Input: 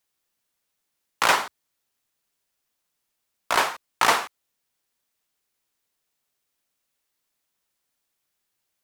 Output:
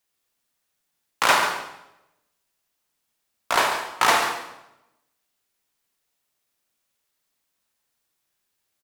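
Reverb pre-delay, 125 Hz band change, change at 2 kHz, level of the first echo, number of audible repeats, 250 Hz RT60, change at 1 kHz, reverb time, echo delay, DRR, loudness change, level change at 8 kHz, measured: 25 ms, +2.0 dB, +2.0 dB, -10.5 dB, 1, 1.0 s, +2.0 dB, 0.90 s, 141 ms, 2.5 dB, +1.0 dB, +1.5 dB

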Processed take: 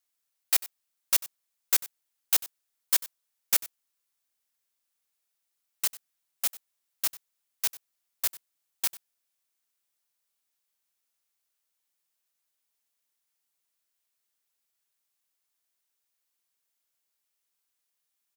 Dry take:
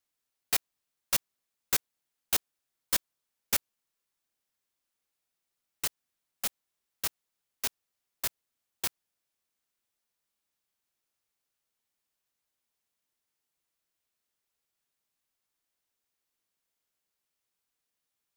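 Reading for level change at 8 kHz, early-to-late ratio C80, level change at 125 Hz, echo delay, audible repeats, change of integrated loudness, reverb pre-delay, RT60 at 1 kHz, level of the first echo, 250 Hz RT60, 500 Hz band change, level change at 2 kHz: +4.0 dB, no reverb, no reading, 95 ms, 1, +4.5 dB, no reverb, no reverb, -18.5 dB, no reverb, -3.5 dB, 0.0 dB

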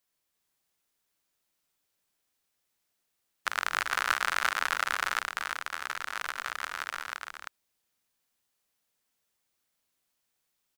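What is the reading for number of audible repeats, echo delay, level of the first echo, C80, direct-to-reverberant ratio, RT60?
1, 342 ms, -3.5 dB, no reverb, no reverb, no reverb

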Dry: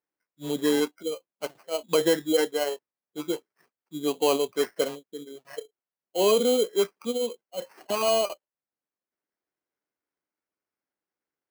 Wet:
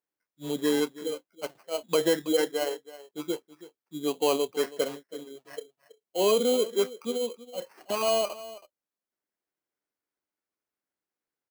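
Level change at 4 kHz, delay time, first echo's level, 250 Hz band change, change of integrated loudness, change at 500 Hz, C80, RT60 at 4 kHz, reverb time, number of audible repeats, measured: -2.0 dB, 325 ms, -17.0 dB, -2.0 dB, -2.0 dB, -2.0 dB, no reverb, no reverb, no reverb, 1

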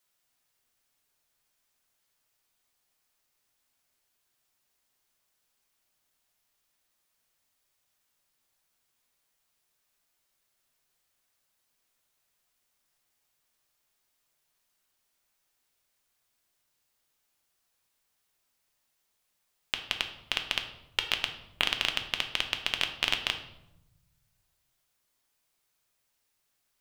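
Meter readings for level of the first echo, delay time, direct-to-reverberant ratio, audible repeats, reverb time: no echo, no echo, 5.0 dB, no echo, 0.90 s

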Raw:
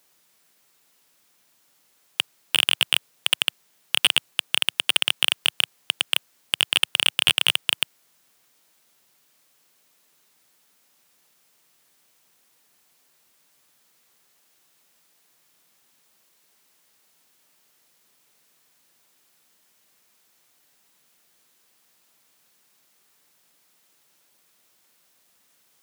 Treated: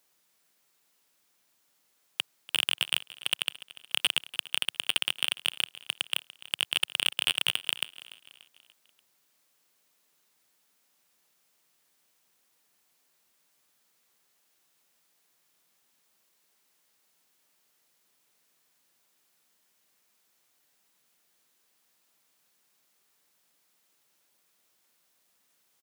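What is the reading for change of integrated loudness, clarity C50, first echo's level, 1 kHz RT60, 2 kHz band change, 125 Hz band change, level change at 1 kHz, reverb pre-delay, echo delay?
-7.5 dB, no reverb, -18.0 dB, no reverb, -7.5 dB, no reading, -7.5 dB, no reverb, 291 ms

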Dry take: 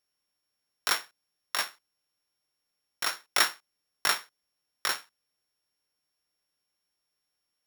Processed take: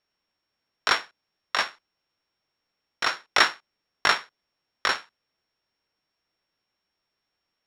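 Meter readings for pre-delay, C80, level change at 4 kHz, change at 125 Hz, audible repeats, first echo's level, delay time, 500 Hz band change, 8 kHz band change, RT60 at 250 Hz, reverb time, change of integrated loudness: no reverb, no reverb, +3.5 dB, +8.0 dB, no echo, no echo, no echo, +7.5 dB, -4.5 dB, no reverb, no reverb, +4.5 dB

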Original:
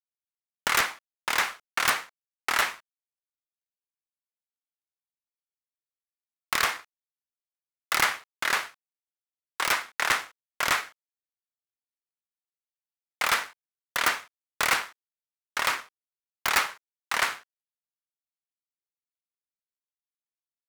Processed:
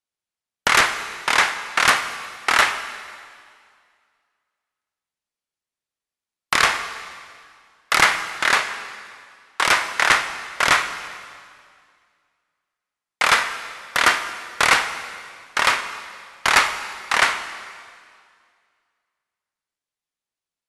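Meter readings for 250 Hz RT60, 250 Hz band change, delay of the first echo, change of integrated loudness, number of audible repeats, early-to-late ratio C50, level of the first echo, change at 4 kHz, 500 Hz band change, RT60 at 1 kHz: 2.2 s, +9.0 dB, no echo, +8.0 dB, no echo, 10.0 dB, no echo, +8.0 dB, +9.0 dB, 2.1 s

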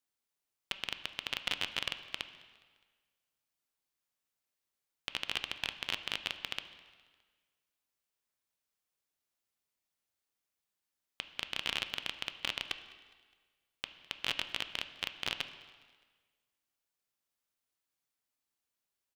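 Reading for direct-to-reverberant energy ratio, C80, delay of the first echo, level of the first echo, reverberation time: 9.5 dB, 13.0 dB, 206 ms, -24.0 dB, 1.5 s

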